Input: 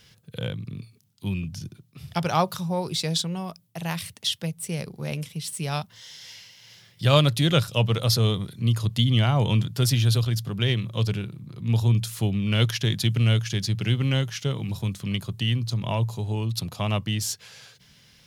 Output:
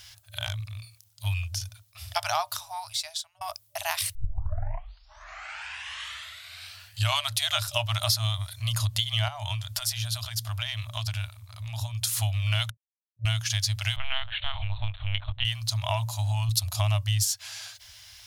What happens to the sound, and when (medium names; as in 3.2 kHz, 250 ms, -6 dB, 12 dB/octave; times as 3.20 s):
0.46–1.26 s: hard clipper -26 dBFS
2.07–3.41 s: fade out
4.15 s: tape start 3.22 s
9.28–12.04 s: compression, threshold -28 dBFS
12.70–13.25 s: mute
13.96–15.45 s: LPC vocoder at 8 kHz pitch kept
16.49–17.25 s: tone controls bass +8 dB, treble +5 dB
whole clip: FFT band-reject 110–590 Hz; tone controls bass 0 dB, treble +6 dB; compression 4:1, threshold -28 dBFS; trim +4.5 dB